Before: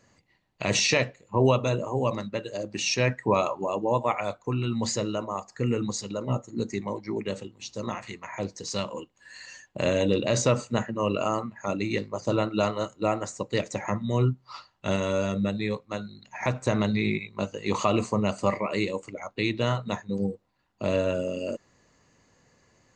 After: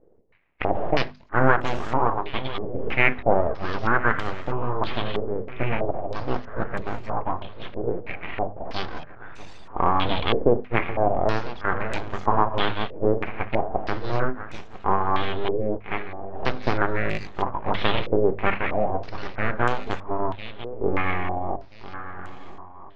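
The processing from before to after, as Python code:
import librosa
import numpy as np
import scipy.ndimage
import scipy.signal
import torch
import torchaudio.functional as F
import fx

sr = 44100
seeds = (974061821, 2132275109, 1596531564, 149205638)

p1 = fx.diode_clip(x, sr, knee_db=-25.0)
p2 = np.abs(p1)
p3 = fx.air_absorb(p2, sr, metres=270.0)
p4 = fx.hum_notches(p3, sr, base_hz=50, count=5)
p5 = p4 + fx.echo_swing(p4, sr, ms=1332, ratio=3, feedback_pct=32, wet_db=-14, dry=0)
p6 = fx.filter_held_lowpass(p5, sr, hz=3.1, low_hz=460.0, high_hz=7700.0)
y = p6 * 10.0 ** (6.0 / 20.0)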